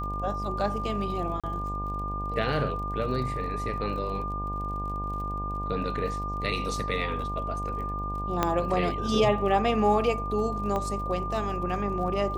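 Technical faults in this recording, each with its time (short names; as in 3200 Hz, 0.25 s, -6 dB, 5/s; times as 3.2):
buzz 50 Hz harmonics 20 -34 dBFS
crackle 42/s -39 dBFS
tone 1200 Hz -32 dBFS
1.4–1.44 gap 36 ms
8.43 pop -9 dBFS
10.76 pop -18 dBFS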